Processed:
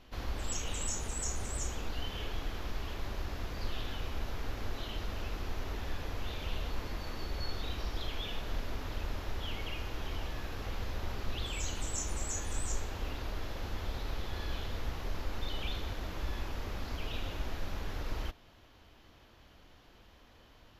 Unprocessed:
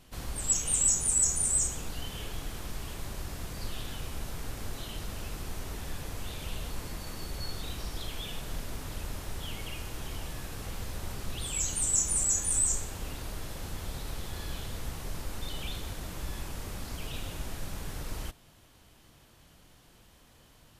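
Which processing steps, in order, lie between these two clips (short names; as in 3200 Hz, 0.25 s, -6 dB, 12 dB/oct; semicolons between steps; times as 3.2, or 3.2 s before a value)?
running mean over 5 samples; bell 150 Hz -8.5 dB 0.75 oct; gain +1.5 dB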